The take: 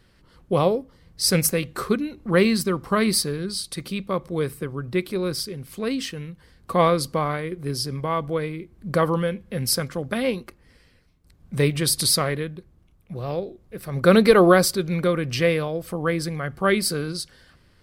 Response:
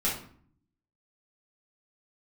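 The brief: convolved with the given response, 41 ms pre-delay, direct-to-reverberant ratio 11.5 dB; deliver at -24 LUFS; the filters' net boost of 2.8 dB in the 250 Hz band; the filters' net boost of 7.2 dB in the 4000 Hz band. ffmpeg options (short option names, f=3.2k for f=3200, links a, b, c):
-filter_complex "[0:a]equalizer=f=250:t=o:g=4,equalizer=f=4k:t=o:g=9,asplit=2[a][b];[1:a]atrim=start_sample=2205,adelay=41[c];[b][c]afir=irnorm=-1:irlink=0,volume=-20dB[d];[a][d]amix=inputs=2:normalize=0,volume=-4dB"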